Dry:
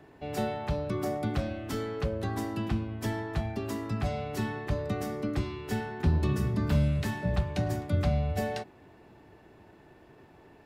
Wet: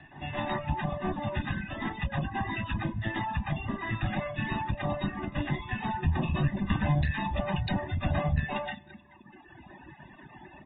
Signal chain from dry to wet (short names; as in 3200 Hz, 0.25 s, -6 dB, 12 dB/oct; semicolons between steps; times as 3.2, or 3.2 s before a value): steep low-pass 8800 Hz 96 dB/oct; feedback echo 0.217 s, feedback 44%, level -11 dB; reverb RT60 0.65 s, pre-delay 0.116 s, DRR -4.5 dB; in parallel at -2.5 dB: compressor 6:1, threshold -33 dBFS, peak gain reduction 13.5 dB; on the sum: reverb removal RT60 1.6 s; one-sided clip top -35.5 dBFS, bottom -18 dBFS; comb 1.1 ms, depth 99%; de-hum 295.6 Hz, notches 4; reverb removal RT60 1.2 s; AAC 16 kbps 32000 Hz